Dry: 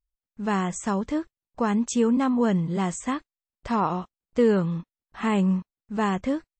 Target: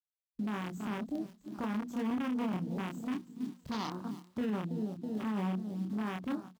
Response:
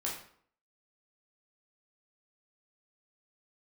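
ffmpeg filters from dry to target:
-filter_complex "[0:a]acrusher=bits=4:dc=4:mix=0:aa=0.000001,aecho=1:1:325|650|975|1300|1625:0.15|0.0808|0.0436|0.0236|0.0127,afwtdn=0.0282,equalizer=f=250:t=o:w=1:g=10,equalizer=f=500:t=o:w=1:g=-6,equalizer=f=2000:t=o:w=1:g=-5,equalizer=f=4000:t=o:w=1:g=4,acompressor=threshold=0.0282:ratio=3,bandreject=f=60:t=h:w=6,bandreject=f=120:t=h:w=6,bandreject=f=180:t=h:w=6,bandreject=f=240:t=h:w=6,asplit=2[s0][s1];[s1]adelay=28,volume=0.531[s2];[s0][s2]amix=inputs=2:normalize=0,alimiter=level_in=1.33:limit=0.0631:level=0:latency=1:release=16,volume=0.75,highpass=100"

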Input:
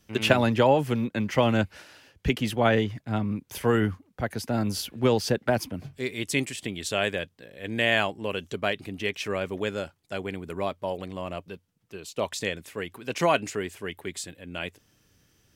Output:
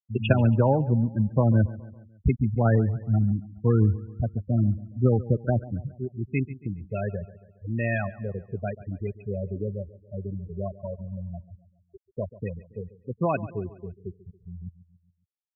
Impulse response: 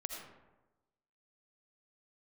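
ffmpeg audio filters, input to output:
-filter_complex "[0:a]equalizer=f=96:w=0.62:g=14,afftfilt=real='re*gte(hypot(re,im),0.2)':imag='im*gte(hypot(re,im),0.2)':win_size=1024:overlap=0.75,asplit=2[s0][s1];[s1]adelay=139,lowpass=f=3600:p=1,volume=0.133,asplit=2[s2][s3];[s3]adelay=139,lowpass=f=3600:p=1,volume=0.51,asplit=2[s4][s5];[s5]adelay=139,lowpass=f=3600:p=1,volume=0.51,asplit=2[s6][s7];[s7]adelay=139,lowpass=f=3600:p=1,volume=0.51[s8];[s2][s4][s6][s8]amix=inputs=4:normalize=0[s9];[s0][s9]amix=inputs=2:normalize=0,volume=0.596"

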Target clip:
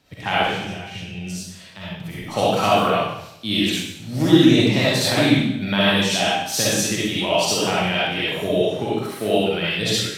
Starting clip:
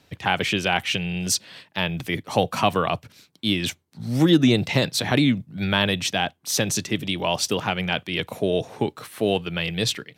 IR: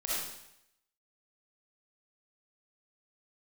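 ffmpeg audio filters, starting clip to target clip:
-filter_complex "[0:a]asettb=1/sr,asplit=3[s0][s1][s2];[s0]atrim=end=0.424[s3];[s1]atrim=start=0.42:end=2.18,asetpts=PTS-STARTPTS,afade=t=in:d=0.004:c=qsin,afade=t=out:st=1.756:d=0.004:c=qsin,acrossover=split=170[s4][s5];[s5]acompressor=threshold=0.0158:ratio=10[s6];[s4][s6]amix=inputs=2:normalize=0[s7];[s2]atrim=start=2.176[s8];[s3][s7]acrossfade=d=0.004:c1=hsin:c2=qsin[s9];[s9][s8]acrossfade=d=0.004:c1=qsin:c2=hsin[s10];[1:a]atrim=start_sample=2205[s11];[s10][s11]afir=irnorm=-1:irlink=0,volume=0.891"

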